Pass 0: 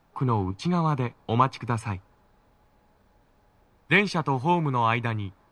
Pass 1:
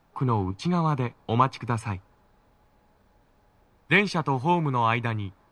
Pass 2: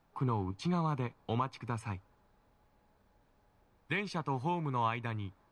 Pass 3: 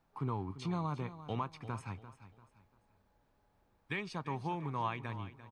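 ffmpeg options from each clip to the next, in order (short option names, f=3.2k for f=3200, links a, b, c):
-af anull
-af "alimiter=limit=-14.5dB:level=0:latency=1:release=350,volume=-7dB"
-af "aecho=1:1:344|688|1032:0.2|0.0678|0.0231,volume=-4dB"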